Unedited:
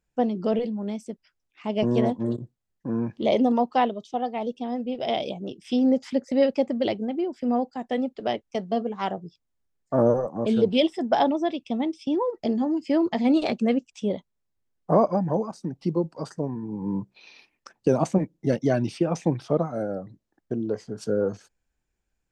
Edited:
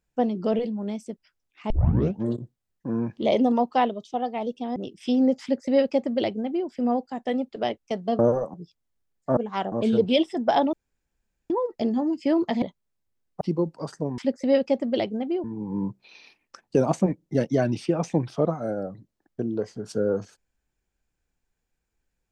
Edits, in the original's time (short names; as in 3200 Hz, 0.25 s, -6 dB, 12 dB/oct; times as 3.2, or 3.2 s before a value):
1.7 tape start 0.53 s
4.76–5.4 cut
6.06–7.32 copy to 16.56
8.83–9.18 swap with 10.01–10.36
11.37–12.14 room tone
13.26–14.12 cut
14.91–15.79 cut